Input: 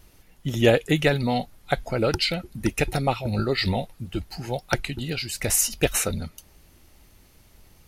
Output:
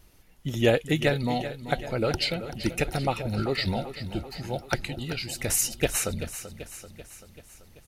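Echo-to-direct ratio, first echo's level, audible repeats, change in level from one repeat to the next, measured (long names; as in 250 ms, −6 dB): −10.5 dB, −12.5 dB, 5, −4.5 dB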